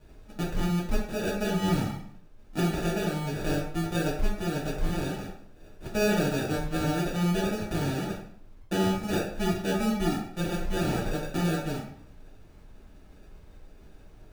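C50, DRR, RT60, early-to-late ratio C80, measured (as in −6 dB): 4.0 dB, −7.0 dB, 0.60 s, 7.0 dB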